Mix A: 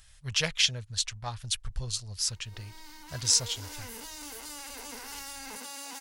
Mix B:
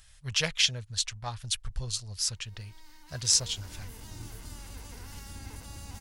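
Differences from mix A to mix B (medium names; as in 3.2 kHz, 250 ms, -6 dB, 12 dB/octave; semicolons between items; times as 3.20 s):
first sound -8.0 dB; second sound: unmuted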